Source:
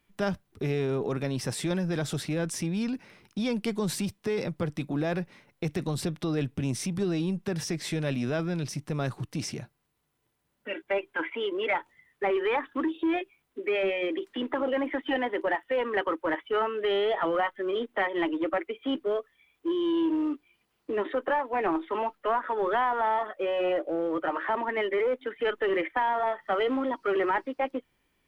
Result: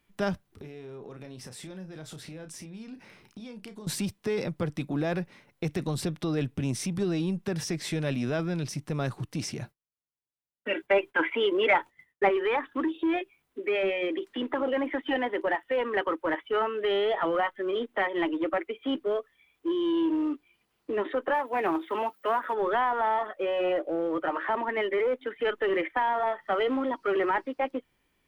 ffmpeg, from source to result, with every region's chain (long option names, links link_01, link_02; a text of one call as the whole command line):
ffmpeg -i in.wav -filter_complex "[0:a]asettb=1/sr,asplit=3[link_01][link_02][link_03];[link_01]atrim=end=0.484[link_04];[link_02]atrim=start=0.48:end=3.87,asetpts=PTS-STARTPTS,afade=type=in:duration=0.004:curve=qsin,afade=type=out:start_time=3.386:duration=0.004:curve=qsin,acompressor=threshold=-41dB:ratio=6:attack=3.2:release=140:knee=1:detection=peak,asplit=2[link_05][link_06];[link_06]adelay=32,volume=-9dB[link_07];[link_05][link_07]amix=inputs=2:normalize=0,atrim=end_sample=149499[link_08];[link_03]atrim=start=3.866[link_09];[link_04][link_08]acrossfade=duration=0.004:curve1=hsin:curve2=qsin[link_10];[link_10][link_09]acrossfade=duration=0.004:curve1=qsin:curve2=hsin,asettb=1/sr,asplit=3[link_11][link_12][link_13];[link_11]atrim=end=9.604[link_14];[link_12]atrim=start=9.6:end=12.29,asetpts=PTS-STARTPTS,afade=type=in:duration=0.004:curve=qsin,afade=type=out:start_time=2.686:duration=0.004:curve=qsin,agate=range=-33dB:threshold=-56dB:ratio=3:release=100:detection=peak,acontrast=30[link_15];[link_13]atrim=start=12.286[link_16];[link_14][link_15]acrossfade=duration=0.004:curve1=hsin:curve2=qsin[link_17];[link_17][link_16]acrossfade=duration=0.004:curve1=qsin:curve2=hsin,asettb=1/sr,asplit=3[link_18][link_19][link_20];[link_18]atrim=end=21.344[link_21];[link_19]atrim=start=21.34:end=22.54,asetpts=PTS-STARTPTS,afade=type=in:duration=0.004:curve=qsin,afade=type=out:start_time=1.196:duration=0.004:curve=qsin,highpass=55,aemphasis=mode=production:type=50fm[link_22];[link_20]atrim=start=22.536[link_23];[link_21][link_22]acrossfade=duration=0.004:curve1=hsin:curve2=qsin[link_24];[link_24][link_23]acrossfade=duration=0.004:curve1=qsin:curve2=hsin" out.wav